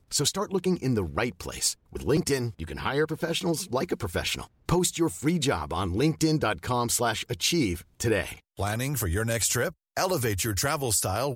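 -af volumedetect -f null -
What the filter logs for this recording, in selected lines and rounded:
mean_volume: -27.5 dB
max_volume: -11.7 dB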